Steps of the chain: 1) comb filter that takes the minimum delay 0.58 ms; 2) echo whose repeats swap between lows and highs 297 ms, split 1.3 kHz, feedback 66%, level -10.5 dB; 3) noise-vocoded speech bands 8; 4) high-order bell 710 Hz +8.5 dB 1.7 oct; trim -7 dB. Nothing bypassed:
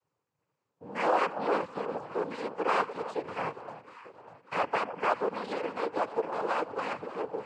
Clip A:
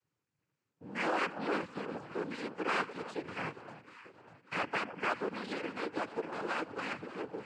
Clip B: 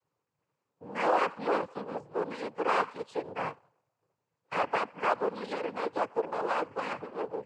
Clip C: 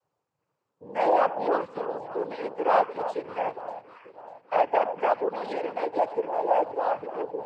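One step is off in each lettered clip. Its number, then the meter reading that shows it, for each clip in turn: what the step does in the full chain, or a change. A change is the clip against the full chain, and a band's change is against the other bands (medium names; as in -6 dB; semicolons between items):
4, 1 kHz band -7.0 dB; 2, momentary loudness spread change -3 LU; 1, 500 Hz band +7.0 dB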